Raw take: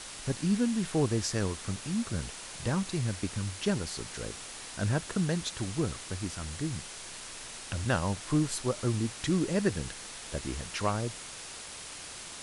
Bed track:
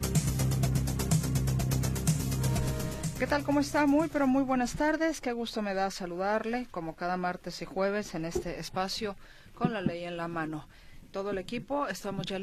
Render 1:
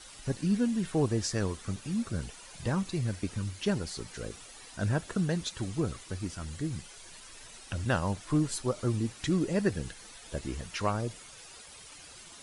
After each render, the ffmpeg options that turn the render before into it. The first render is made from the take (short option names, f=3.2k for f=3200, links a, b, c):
-af "afftdn=nr=11:nf=-44"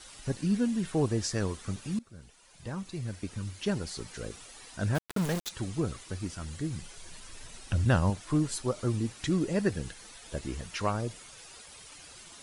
-filter_complex "[0:a]asplit=3[a][b][c];[a]afade=t=out:st=4.94:d=0.02[d];[b]aeval=exprs='val(0)*gte(abs(val(0)),0.0282)':c=same,afade=t=in:st=4.94:d=0.02,afade=t=out:st=5.48:d=0.02[e];[c]afade=t=in:st=5.48:d=0.02[f];[d][e][f]amix=inputs=3:normalize=0,asettb=1/sr,asplit=3[g][h][i];[g]atrim=end=6.814[j];[h]atrim=start=6.81:end=8.1,asetpts=PTS-STARTPTS,afade=t=in:d=0.004:c=qsin,afade=t=out:st=1.286:d=0.004:c=qsin,lowshelf=f=220:g=9[k];[i]atrim=start=8.096[l];[j][k]acrossfade=d=0.004:c1=hsin:c2=qsin[m];[m][l]acrossfade=d=0.004:c1=qsin:c2=hsin,asplit=2[n][o];[n]atrim=end=1.99,asetpts=PTS-STARTPTS,afade=t=out:st=1.986:d=0.004:c=hsin:silence=0.0891251[p];[o]atrim=start=1.99,asetpts=PTS-STARTPTS,afade=t=in:d=1.95:silence=0.0891251[q];[p][q]concat=n=2:v=0:a=1"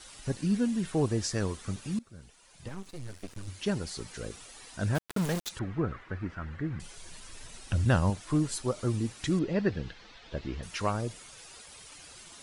-filter_complex "[0:a]asettb=1/sr,asplit=3[a][b][c];[a]atrim=end=2.684[d];[b]atrim=start=2.68:end=3.48,asetpts=PTS-STARTPTS,afade=t=in:d=0.004:c=qsin,afade=t=out:st=0.796:d=0.004:c=qsin,aeval=exprs='max(val(0),0)':c=same[e];[c]atrim=start=3.476[f];[d][e]acrossfade=d=0.004:c1=hsin:c2=qsin[g];[g][f]acrossfade=d=0.004:c1=qsin:c2=hsin,asettb=1/sr,asplit=3[h][i][j];[h]atrim=end=5.594[k];[i]atrim=start=5.59:end=6.8,asetpts=PTS-STARTPTS,afade=t=in:d=0.004:c=qsin,afade=t=out:st=1.206:d=0.004:c=qsin,lowpass=f=1.7k:t=q:w=2.2[l];[j]atrim=start=6.796[m];[k][l]acrossfade=d=0.004:c1=hsin:c2=qsin[n];[n][m]acrossfade=d=0.004:c1=qsin:c2=hsin,asettb=1/sr,asplit=3[o][p][q];[o]atrim=end=9.394[r];[p]atrim=start=9.39:end=10.63,asetpts=PTS-STARTPTS,afade=t=in:d=0.004:c=qsin,afade=t=out:st=1.236:d=0.004:c=qsin,lowpass=f=4.5k:w=0.5412,lowpass=f=4.5k:w=1.3066[s];[q]atrim=start=10.626[t];[r][s]acrossfade=d=0.004:c1=hsin:c2=qsin[u];[u][t]acrossfade=d=0.004:c1=qsin:c2=hsin"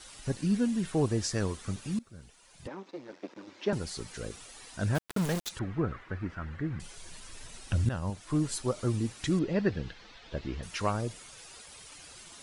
-filter_complex "[0:a]asettb=1/sr,asplit=3[a][b][c];[a]atrim=end=2.674[d];[b]atrim=start=2.67:end=3.73,asetpts=PTS-STARTPTS,afade=t=in:d=0.004:c=qsin,afade=t=out:st=1.056:d=0.004:c=qsin,highpass=f=220:w=0.5412,highpass=f=220:w=1.3066,equalizer=f=330:t=q:w=4:g=7,equalizer=f=550:t=q:w=4:g=6,equalizer=f=910:t=q:w=4:g=6,equalizer=f=3k:t=q:w=4:g=-5,equalizer=f=4.4k:t=q:w=4:g=-5,lowpass=f=4.9k:w=0.5412,lowpass=f=4.9k:w=1.3066[e];[c]atrim=start=3.726[f];[d][e]acrossfade=d=0.004:c1=hsin:c2=qsin[g];[g][f]acrossfade=d=0.004:c1=qsin:c2=hsin,asplit=2[h][i];[h]atrim=end=7.89,asetpts=PTS-STARTPTS,afade=t=out:st=7.886:d=0.004:c=hsin:silence=0.223872[j];[i]atrim=start=7.89,asetpts=PTS-STARTPTS,afade=t=in:d=0.61:silence=0.223872[k];[j][k]concat=n=2:v=0:a=1"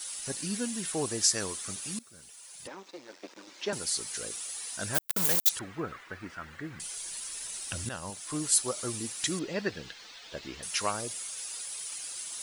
-af "aemphasis=mode=production:type=riaa"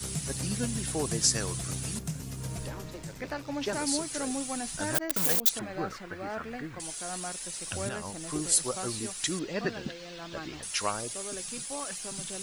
-filter_complex "[1:a]volume=-8dB[a];[0:a][a]amix=inputs=2:normalize=0"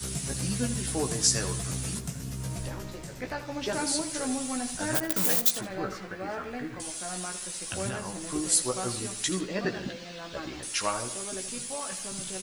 -filter_complex "[0:a]asplit=2[a][b];[b]adelay=16,volume=-5dB[c];[a][c]amix=inputs=2:normalize=0,asplit=2[d][e];[e]adelay=81,lowpass=f=4.7k:p=1,volume=-11.5dB,asplit=2[f][g];[g]adelay=81,lowpass=f=4.7k:p=1,volume=0.52,asplit=2[h][i];[i]adelay=81,lowpass=f=4.7k:p=1,volume=0.52,asplit=2[j][k];[k]adelay=81,lowpass=f=4.7k:p=1,volume=0.52,asplit=2[l][m];[m]adelay=81,lowpass=f=4.7k:p=1,volume=0.52,asplit=2[n][o];[o]adelay=81,lowpass=f=4.7k:p=1,volume=0.52[p];[d][f][h][j][l][n][p]amix=inputs=7:normalize=0"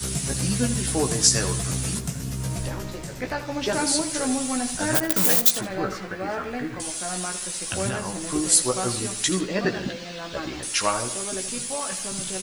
-af "volume=6dB,alimiter=limit=-1dB:level=0:latency=1"